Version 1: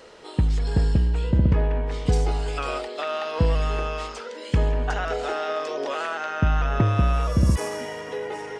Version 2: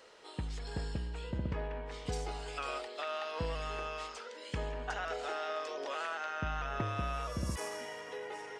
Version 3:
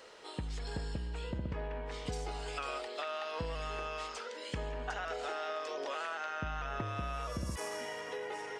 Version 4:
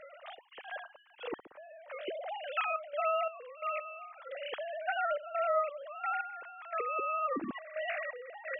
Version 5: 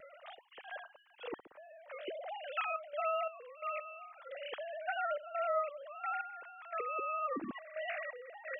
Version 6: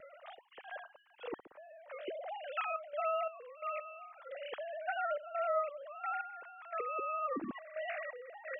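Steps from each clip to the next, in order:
low shelf 380 Hz -11 dB; gain -8 dB
compressor 2.5:1, threshold -40 dBFS, peak gain reduction 7 dB; gain +3.5 dB
sine-wave speech; step gate "xx.xx..x...xxx" 87 bpm -12 dB; gain +4 dB
vibrato 0.79 Hz 10 cents; gain -3.5 dB
high shelf 3200 Hz -8.5 dB; gain +1 dB

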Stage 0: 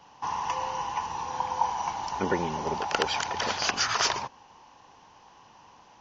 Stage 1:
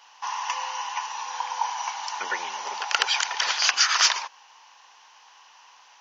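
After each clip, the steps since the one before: HPF 1400 Hz 12 dB/oct; gain +7.5 dB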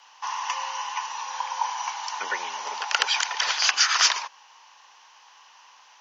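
frequency shift +16 Hz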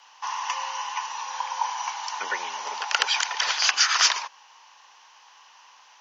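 nothing audible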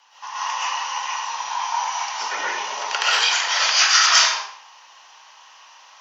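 reverb RT60 0.60 s, pre-delay 85 ms, DRR -9 dB; gain -3.5 dB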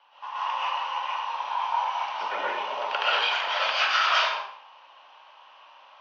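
speaker cabinet 130–3200 Hz, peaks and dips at 230 Hz +4 dB, 580 Hz +8 dB, 1900 Hz -8 dB; gain -2.5 dB

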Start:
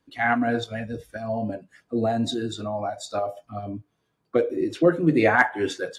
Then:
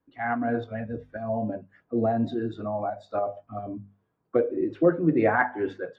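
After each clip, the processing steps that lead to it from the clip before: LPF 1500 Hz 12 dB/oct; notches 50/100/150/200/250 Hz; AGC gain up to 4.5 dB; gain -5 dB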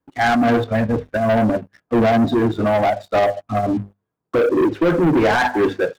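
limiter -17 dBFS, peak gain reduction 9 dB; sample leveller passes 3; transient shaper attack 0 dB, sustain -5 dB; gain +6 dB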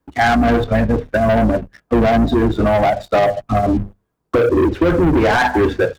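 octaver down 2 oct, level -5 dB; compressor 2.5:1, threshold -21 dBFS, peak gain reduction 7 dB; gain +7 dB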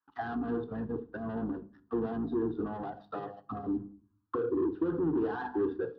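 fixed phaser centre 2200 Hz, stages 6; auto-wah 430–1400 Hz, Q 2, down, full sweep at -18.5 dBFS; shoebox room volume 440 m³, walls furnished, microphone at 0.42 m; gain -7 dB

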